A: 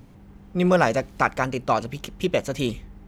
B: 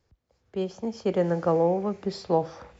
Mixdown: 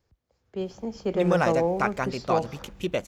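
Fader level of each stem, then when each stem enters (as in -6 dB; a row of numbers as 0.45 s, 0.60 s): -5.0 dB, -2.0 dB; 0.60 s, 0.00 s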